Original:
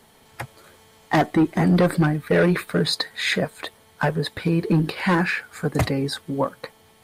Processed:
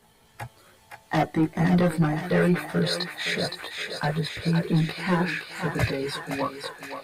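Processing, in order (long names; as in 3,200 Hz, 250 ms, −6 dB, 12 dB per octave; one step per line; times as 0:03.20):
feedback echo with a high-pass in the loop 517 ms, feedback 67%, high-pass 640 Hz, level −5 dB
multi-voice chorus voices 6, 0.35 Hz, delay 18 ms, depth 1.4 ms
level −2 dB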